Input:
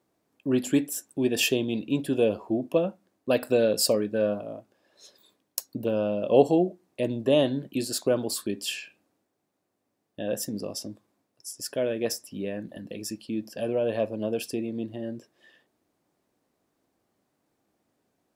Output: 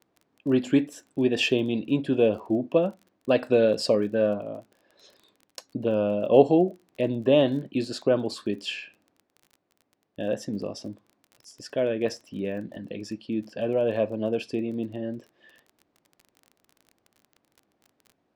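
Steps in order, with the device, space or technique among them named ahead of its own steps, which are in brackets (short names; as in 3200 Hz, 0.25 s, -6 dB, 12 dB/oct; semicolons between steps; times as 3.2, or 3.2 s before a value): lo-fi chain (LPF 3700 Hz 12 dB/oct; wow and flutter 26 cents; crackle 24/s -42 dBFS); gain +2 dB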